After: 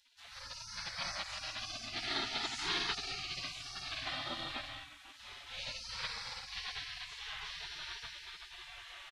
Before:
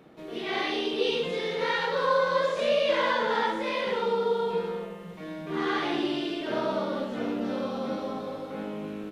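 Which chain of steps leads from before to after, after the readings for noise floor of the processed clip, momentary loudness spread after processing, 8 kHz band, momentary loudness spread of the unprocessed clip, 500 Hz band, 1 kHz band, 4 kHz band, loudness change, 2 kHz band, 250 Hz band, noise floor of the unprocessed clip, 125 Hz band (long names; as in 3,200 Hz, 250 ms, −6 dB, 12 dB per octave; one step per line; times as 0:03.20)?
−55 dBFS, 13 LU, can't be measured, 11 LU, −27.0 dB, −16.0 dB, −3.0 dB, −11.5 dB, −9.5 dB, −22.0 dB, −41 dBFS, −11.5 dB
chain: downsampling to 32,000 Hz
high-frequency loss of the air 57 metres
gate on every frequency bin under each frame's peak −30 dB weak
level +8.5 dB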